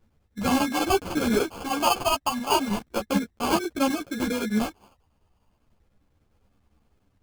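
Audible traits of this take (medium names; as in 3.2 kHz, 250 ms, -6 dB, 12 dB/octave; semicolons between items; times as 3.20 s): chopped level 10 Hz, depth 60%, duty 80%; phasing stages 6, 0.34 Hz, lowest notch 410–1300 Hz; aliases and images of a low sample rate 1.9 kHz, jitter 0%; a shimmering, thickened sound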